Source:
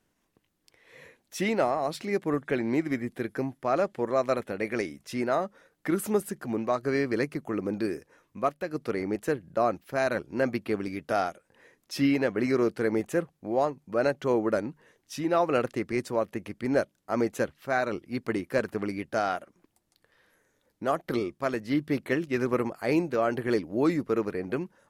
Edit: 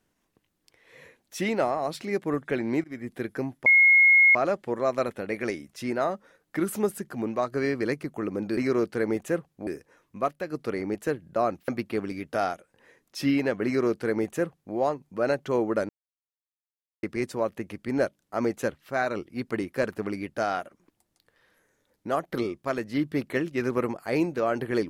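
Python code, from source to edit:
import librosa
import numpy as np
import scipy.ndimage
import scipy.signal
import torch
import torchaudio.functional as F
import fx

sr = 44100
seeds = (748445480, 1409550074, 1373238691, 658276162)

y = fx.edit(x, sr, fx.fade_in_from(start_s=2.84, length_s=0.3, floor_db=-23.5),
    fx.insert_tone(at_s=3.66, length_s=0.69, hz=2160.0, db=-13.5),
    fx.cut(start_s=9.89, length_s=0.55),
    fx.duplicate(start_s=12.41, length_s=1.1, to_s=7.88),
    fx.silence(start_s=14.65, length_s=1.14), tone=tone)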